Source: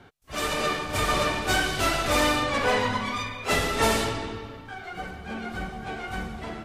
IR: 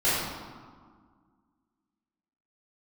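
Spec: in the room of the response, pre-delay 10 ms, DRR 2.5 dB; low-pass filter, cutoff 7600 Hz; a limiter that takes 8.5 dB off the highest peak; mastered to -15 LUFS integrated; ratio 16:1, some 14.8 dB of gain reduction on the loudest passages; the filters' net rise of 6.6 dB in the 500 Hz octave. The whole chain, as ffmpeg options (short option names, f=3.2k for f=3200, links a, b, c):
-filter_complex "[0:a]lowpass=7.6k,equalizer=f=500:t=o:g=8,acompressor=threshold=-29dB:ratio=16,alimiter=level_in=4dB:limit=-24dB:level=0:latency=1,volume=-4dB,asplit=2[a][b];[1:a]atrim=start_sample=2205,adelay=10[c];[b][c]afir=irnorm=-1:irlink=0,volume=-17.5dB[d];[a][d]amix=inputs=2:normalize=0,volume=19.5dB"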